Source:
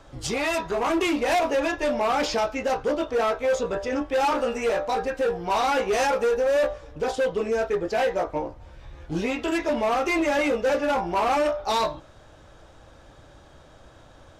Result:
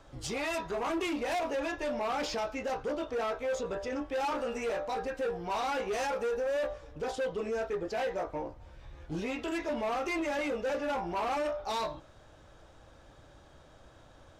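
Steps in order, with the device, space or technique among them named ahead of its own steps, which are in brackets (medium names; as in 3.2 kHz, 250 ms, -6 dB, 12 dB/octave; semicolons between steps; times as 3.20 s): soft clipper into limiter (saturation -17.5 dBFS, distortion -23 dB; peak limiter -22 dBFS, peak gain reduction 2.5 dB); trim -6 dB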